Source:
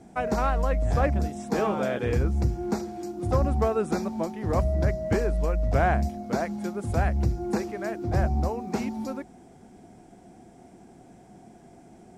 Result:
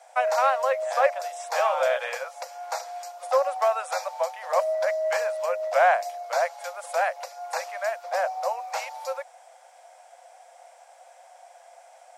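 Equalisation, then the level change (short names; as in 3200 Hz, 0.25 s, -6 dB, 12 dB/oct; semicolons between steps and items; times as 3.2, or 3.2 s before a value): Chebyshev high-pass 520 Hz, order 8; +6.5 dB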